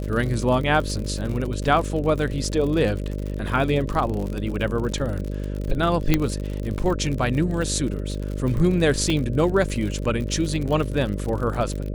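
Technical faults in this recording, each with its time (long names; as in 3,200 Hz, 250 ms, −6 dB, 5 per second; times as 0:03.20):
mains buzz 50 Hz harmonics 12 −28 dBFS
surface crackle 65 per second −28 dBFS
0:06.14: click −4 dBFS
0:09.10: drop-out 2.2 ms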